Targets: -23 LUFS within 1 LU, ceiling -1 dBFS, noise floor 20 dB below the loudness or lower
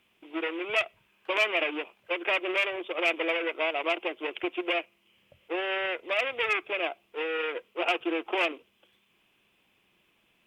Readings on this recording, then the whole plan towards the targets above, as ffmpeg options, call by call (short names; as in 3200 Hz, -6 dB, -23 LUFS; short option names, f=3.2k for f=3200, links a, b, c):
loudness -29.0 LUFS; peak -16.0 dBFS; loudness target -23.0 LUFS
-> -af "volume=6dB"